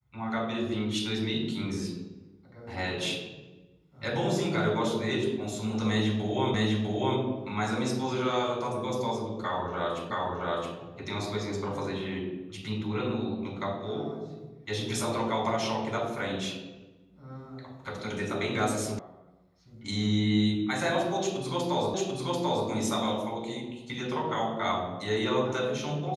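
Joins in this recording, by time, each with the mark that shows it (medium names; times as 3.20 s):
6.54 s: repeat of the last 0.65 s
10.10 s: repeat of the last 0.67 s
18.99 s: sound stops dead
21.94 s: repeat of the last 0.74 s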